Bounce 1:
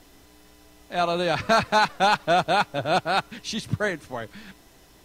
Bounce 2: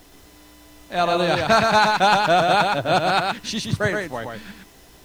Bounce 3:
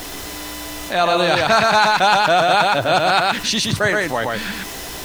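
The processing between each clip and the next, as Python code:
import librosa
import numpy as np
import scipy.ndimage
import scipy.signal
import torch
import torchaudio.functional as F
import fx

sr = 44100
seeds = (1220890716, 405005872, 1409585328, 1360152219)

y1 = fx.quant_dither(x, sr, seeds[0], bits=10, dither='none')
y1 = y1 + 10.0 ** (-4.0 / 20.0) * np.pad(y1, (int(120 * sr / 1000.0), 0))[:len(y1)]
y1 = y1 * librosa.db_to_amplitude(3.0)
y2 = fx.low_shelf(y1, sr, hz=440.0, db=-7.0)
y2 = fx.env_flatten(y2, sr, amount_pct=50)
y2 = y2 * librosa.db_to_amplitude(2.5)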